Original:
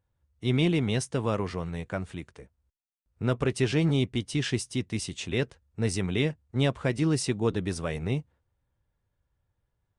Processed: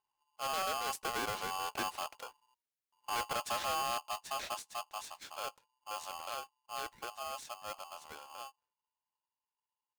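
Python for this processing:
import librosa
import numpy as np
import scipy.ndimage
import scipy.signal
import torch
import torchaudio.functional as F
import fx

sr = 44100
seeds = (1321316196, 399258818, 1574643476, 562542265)

y = fx.doppler_pass(x, sr, speed_mps=30, closest_m=19.0, pass_at_s=2.23)
y = np.clip(y, -10.0 ** (-32.0 / 20.0), 10.0 ** (-32.0 / 20.0))
y = y * np.sign(np.sin(2.0 * np.pi * 950.0 * np.arange(len(y)) / sr))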